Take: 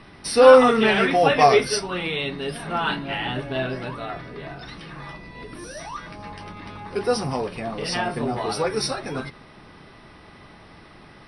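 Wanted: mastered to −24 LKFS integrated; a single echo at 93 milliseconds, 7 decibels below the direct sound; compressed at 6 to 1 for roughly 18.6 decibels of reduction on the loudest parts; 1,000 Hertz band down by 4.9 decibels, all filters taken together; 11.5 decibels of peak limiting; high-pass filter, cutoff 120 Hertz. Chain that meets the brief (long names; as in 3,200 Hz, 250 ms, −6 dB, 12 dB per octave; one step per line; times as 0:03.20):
high-pass filter 120 Hz
parametric band 1,000 Hz −7.5 dB
downward compressor 6 to 1, threshold −29 dBFS
brickwall limiter −29.5 dBFS
single-tap delay 93 ms −7 dB
level +13.5 dB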